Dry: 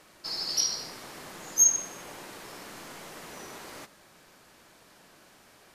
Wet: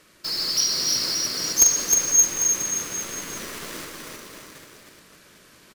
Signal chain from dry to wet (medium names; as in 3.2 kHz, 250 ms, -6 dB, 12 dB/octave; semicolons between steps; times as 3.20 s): chunks repeated in reverse 382 ms, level -3 dB; peaking EQ 790 Hz -11.5 dB 0.6 oct; in parallel at -8.5 dB: companded quantiser 2-bit; on the sum: bouncing-ball echo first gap 310 ms, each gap 0.85×, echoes 5; trim +2 dB